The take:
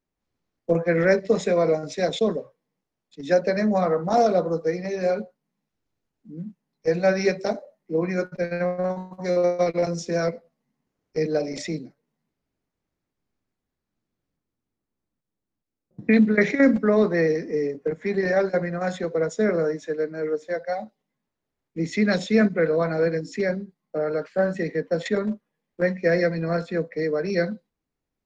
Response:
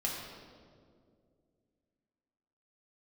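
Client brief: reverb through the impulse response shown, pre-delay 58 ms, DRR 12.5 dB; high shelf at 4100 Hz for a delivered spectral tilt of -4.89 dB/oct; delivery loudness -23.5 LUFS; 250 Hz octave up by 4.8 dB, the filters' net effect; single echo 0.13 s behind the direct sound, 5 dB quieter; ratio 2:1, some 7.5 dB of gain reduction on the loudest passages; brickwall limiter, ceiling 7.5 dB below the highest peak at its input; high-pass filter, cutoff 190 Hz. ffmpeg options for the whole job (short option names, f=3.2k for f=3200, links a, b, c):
-filter_complex "[0:a]highpass=190,equalizer=f=250:t=o:g=8.5,highshelf=f=4.1k:g=-8.5,acompressor=threshold=-21dB:ratio=2,alimiter=limit=-16dB:level=0:latency=1,aecho=1:1:130:0.562,asplit=2[a][b];[1:a]atrim=start_sample=2205,adelay=58[c];[b][c]afir=irnorm=-1:irlink=0,volume=-16.5dB[d];[a][d]amix=inputs=2:normalize=0,volume=1.5dB"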